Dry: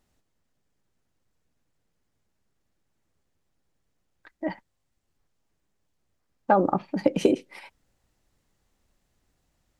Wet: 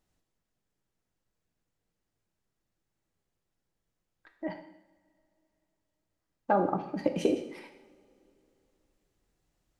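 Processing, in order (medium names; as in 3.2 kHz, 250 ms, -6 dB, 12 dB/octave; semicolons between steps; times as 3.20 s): two-slope reverb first 0.78 s, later 3.2 s, from -22 dB, DRR 5.5 dB; trim -6.5 dB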